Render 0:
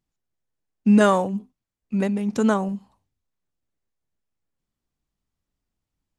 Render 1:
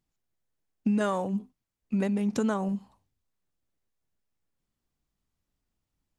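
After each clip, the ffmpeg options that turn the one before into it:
-af "acompressor=threshold=0.0631:ratio=6"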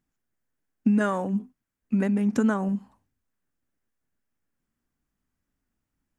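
-af "equalizer=f=250:t=o:w=0.67:g=7,equalizer=f=1600:t=o:w=0.67:g=7,equalizer=f=4000:t=o:w=0.67:g=-6"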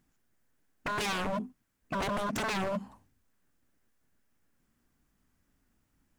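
-filter_complex "[0:a]asplit=2[s0][s1];[s1]acompressor=threshold=0.0251:ratio=6,volume=1.33[s2];[s0][s2]amix=inputs=2:normalize=0,aeval=exprs='0.0447*(abs(mod(val(0)/0.0447+3,4)-2)-1)':c=same"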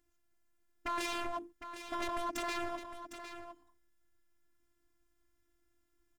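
-filter_complex "[0:a]afftfilt=real='hypot(re,im)*cos(PI*b)':imag='0':win_size=512:overlap=0.75,asplit=2[s0][s1];[s1]aecho=0:1:757:0.299[s2];[s0][s2]amix=inputs=2:normalize=0,volume=0.891"

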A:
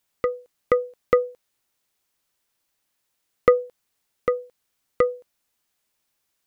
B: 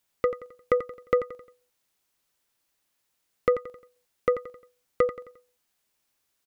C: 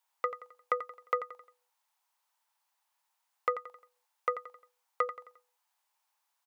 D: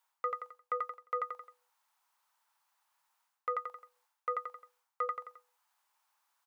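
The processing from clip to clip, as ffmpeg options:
-filter_complex "[0:a]alimiter=limit=0.398:level=0:latency=1:release=239,asplit=2[s0][s1];[s1]aecho=0:1:88|176|264|352:0.266|0.112|0.0469|0.0197[s2];[s0][s2]amix=inputs=2:normalize=0,volume=0.891"
-af "highpass=f=890:t=q:w=4.9,volume=0.531"
-af "areverse,acompressor=threshold=0.0141:ratio=8,areverse,equalizer=f=1300:t=o:w=0.84:g=6,volume=1.12"

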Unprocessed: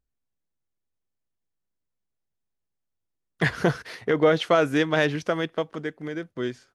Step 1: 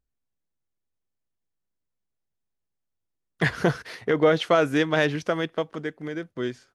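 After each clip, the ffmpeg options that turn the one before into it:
-af anull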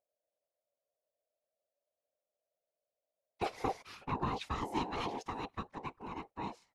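-filter_complex "[0:a]acrossover=split=400|3000[s0][s1][s2];[s1]acompressor=threshold=0.0224:ratio=6[s3];[s0][s3][s2]amix=inputs=3:normalize=0,aeval=exprs='val(0)*sin(2*PI*600*n/s)':c=same,afftfilt=real='hypot(re,im)*cos(2*PI*random(0))':imag='hypot(re,im)*sin(2*PI*random(1))':win_size=512:overlap=0.75,volume=0.794"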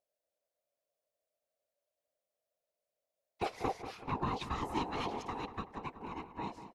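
-filter_complex "[0:a]asplit=2[s0][s1];[s1]adelay=190,lowpass=f=2500:p=1,volume=0.299,asplit=2[s2][s3];[s3]adelay=190,lowpass=f=2500:p=1,volume=0.49,asplit=2[s4][s5];[s5]adelay=190,lowpass=f=2500:p=1,volume=0.49,asplit=2[s6][s7];[s7]adelay=190,lowpass=f=2500:p=1,volume=0.49,asplit=2[s8][s9];[s9]adelay=190,lowpass=f=2500:p=1,volume=0.49[s10];[s0][s2][s4][s6][s8][s10]amix=inputs=6:normalize=0"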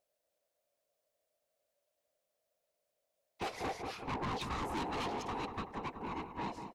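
-af "asoftclip=type=tanh:threshold=0.0112,volume=1.78"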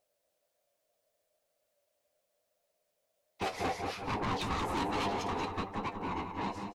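-filter_complex "[0:a]flanger=delay=9.5:depth=2.5:regen=50:speed=1.2:shape=triangular,asplit=2[s0][s1];[s1]aecho=0:1:180:0.335[s2];[s0][s2]amix=inputs=2:normalize=0,volume=2.51"

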